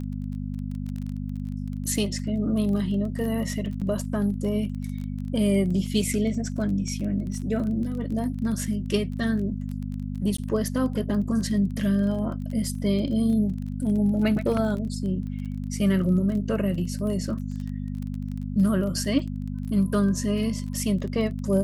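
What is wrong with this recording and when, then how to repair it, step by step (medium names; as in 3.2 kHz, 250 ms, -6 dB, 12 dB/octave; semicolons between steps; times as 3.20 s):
crackle 21 per s -32 dBFS
hum 50 Hz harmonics 5 -31 dBFS
3.81–3.82 s: dropout 6.6 ms
10.37–10.38 s: dropout 14 ms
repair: de-click; de-hum 50 Hz, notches 5; interpolate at 3.81 s, 6.6 ms; interpolate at 10.37 s, 14 ms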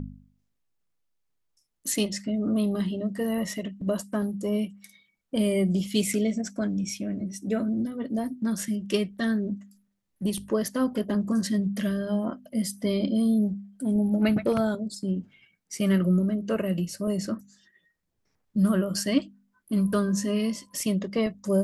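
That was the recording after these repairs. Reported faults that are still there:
nothing left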